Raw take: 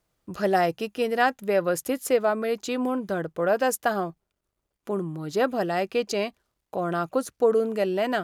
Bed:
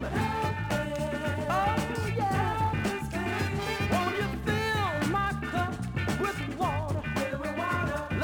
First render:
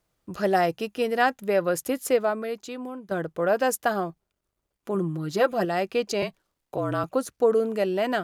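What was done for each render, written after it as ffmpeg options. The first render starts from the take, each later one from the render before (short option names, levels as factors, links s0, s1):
-filter_complex "[0:a]asettb=1/sr,asplit=3[s0][s1][s2];[s0]atrim=end=4.944[s3];[s1]atrim=start=4.94:end=5.65,asetpts=PTS-STARTPTS,afade=t=in:d=0.004:c=qsin,afade=t=out:st=0.706:d=0.004:c=qsin,aecho=1:1:5.8:0.62,atrim=end_sample=31311[s4];[s2]atrim=start=5.646[s5];[s3][s4]acrossfade=d=0.004:c1=hsin:c2=qsin[s6];[s6][s5]acrossfade=d=0.004:c1=qsin:c2=hsin,asettb=1/sr,asplit=3[s7][s8][s9];[s7]atrim=end=6.224[s10];[s8]atrim=start=6.22:end=7.04,asetpts=PTS-STARTPTS,afade=t=in:d=0.004:c=qsin,afade=t=out:st=0.816:d=0.004:c=qsin,afreqshift=-45[s11];[s9]atrim=start=7.036[s12];[s10][s11]acrossfade=d=0.004:c1=hsin:c2=qsin[s13];[s13][s12]acrossfade=d=0.004:c1=qsin:c2=hsin,asplit=2[s14][s15];[s14]atrim=end=3.11,asetpts=PTS-STARTPTS,afade=t=out:st=2.16:d=0.95:c=qua:silence=0.298538[s16];[s15]atrim=start=3.11,asetpts=PTS-STARTPTS,afade=t=in:d=0.004:c=hsin:silence=0.298538[s17];[s16][s17]concat=n=2:v=0:a=1"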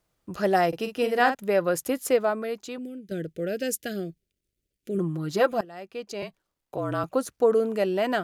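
-filter_complex "[0:a]asettb=1/sr,asplit=3[s0][s1][s2];[s0]atrim=end=0.684[s3];[s1]atrim=start=0.68:end=1.35,asetpts=PTS-STARTPTS,afade=t=in:d=0.004:c=qsin,afade=t=out:st=0.666:d=0.004:c=qsin,asplit=2[s4][s5];[s5]adelay=46,volume=0.398[s6];[s4][s6]amix=inputs=2:normalize=0,atrim=end_sample=29547[s7];[s2]atrim=start=1.346[s8];[s3][s7]acrossfade=d=0.004:c1=hsin:c2=qsin[s9];[s9][s8]acrossfade=d=0.004:c1=qsin:c2=hsin,asettb=1/sr,asplit=3[s10][s11][s12];[s10]atrim=end=2.784[s13];[s11]atrim=start=2.78:end=4.99,asetpts=PTS-STARTPTS,afade=t=in:d=0.004:c=qsin,afade=t=out:st=2.206:d=0.004:c=qsin,asuperstop=centerf=970:order=4:qfactor=0.59[s14];[s12]atrim=start=4.986[s15];[s13][s14]acrossfade=d=0.004:c1=hsin:c2=qsin[s16];[s16][s15]acrossfade=d=0.004:c1=qsin:c2=hsin,asplit=2[s17][s18];[s17]atrim=end=5.61,asetpts=PTS-STARTPTS,afade=t=out:st=5.606:d=0.004:c=hsin:silence=0.0891251[s19];[s18]atrim=start=5.61,asetpts=PTS-STARTPTS,afade=t=in:d=1.58:silence=0.0891251[s20];[s19][s20]concat=n=2:v=0:a=1"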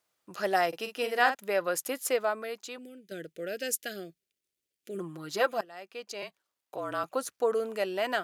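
-af "highpass=f=910:p=1"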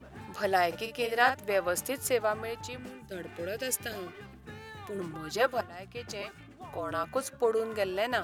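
-filter_complex "[1:a]volume=0.133[s0];[0:a][s0]amix=inputs=2:normalize=0"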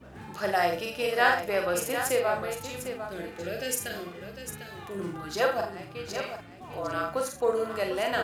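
-filter_complex "[0:a]asplit=2[s0][s1];[s1]adelay=46,volume=0.473[s2];[s0][s2]amix=inputs=2:normalize=0,asplit=2[s3][s4];[s4]aecho=0:1:40|74|751:0.447|0.251|0.355[s5];[s3][s5]amix=inputs=2:normalize=0"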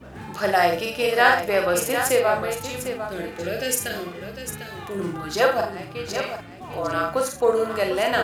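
-af "volume=2.11,alimiter=limit=0.708:level=0:latency=1"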